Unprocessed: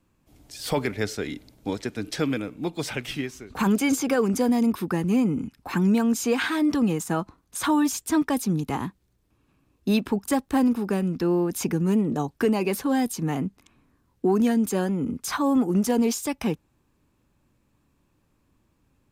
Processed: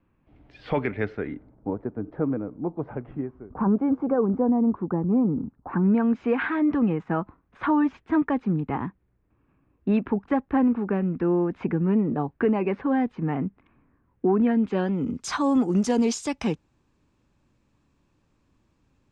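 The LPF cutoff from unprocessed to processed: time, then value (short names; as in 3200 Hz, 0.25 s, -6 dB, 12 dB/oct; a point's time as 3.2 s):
LPF 24 dB/oct
0.97 s 2600 Hz
1.72 s 1100 Hz
5.54 s 1100 Hz
6.08 s 2200 Hz
14.44 s 2200 Hz
14.87 s 3700 Hz
15.17 s 7400 Hz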